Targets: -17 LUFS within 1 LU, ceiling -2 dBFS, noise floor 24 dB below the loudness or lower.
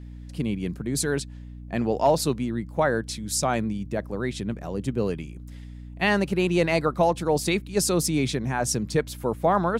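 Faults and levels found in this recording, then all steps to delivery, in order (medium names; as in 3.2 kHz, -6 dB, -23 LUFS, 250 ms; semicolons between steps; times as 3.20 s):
hum 60 Hz; highest harmonic 300 Hz; hum level -38 dBFS; loudness -25.5 LUFS; peak level -9.0 dBFS; loudness target -17.0 LUFS
-> hum notches 60/120/180/240/300 Hz; trim +8.5 dB; peak limiter -2 dBFS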